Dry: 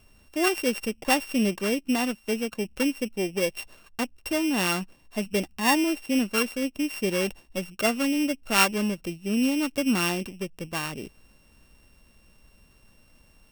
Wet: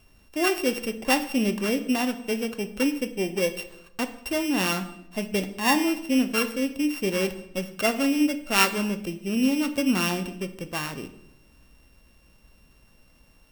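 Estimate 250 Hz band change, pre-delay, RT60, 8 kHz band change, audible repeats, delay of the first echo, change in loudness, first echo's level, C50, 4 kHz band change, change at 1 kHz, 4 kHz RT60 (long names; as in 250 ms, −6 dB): +1.5 dB, 4 ms, 0.80 s, −0.5 dB, no echo audible, no echo audible, +1.0 dB, no echo audible, 13.0 dB, +0.5 dB, +0.5 dB, 0.60 s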